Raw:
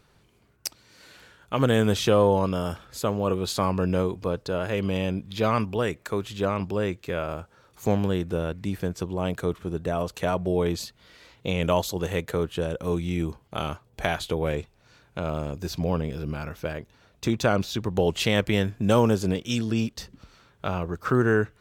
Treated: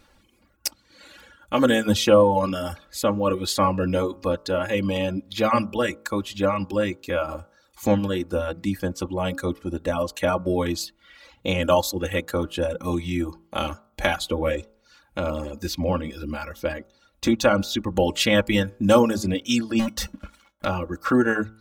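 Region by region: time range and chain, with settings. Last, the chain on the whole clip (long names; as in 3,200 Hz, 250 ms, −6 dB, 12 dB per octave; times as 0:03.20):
0:19.79–0:20.65: parametric band 4,400 Hz −6.5 dB 0.46 octaves + leveller curve on the samples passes 5 + tuned comb filter 200 Hz, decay 0.2 s, harmonics odd, mix 70%
whole clip: hum removal 54.87 Hz, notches 27; reverb reduction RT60 0.87 s; comb filter 3.6 ms, depth 82%; level +3 dB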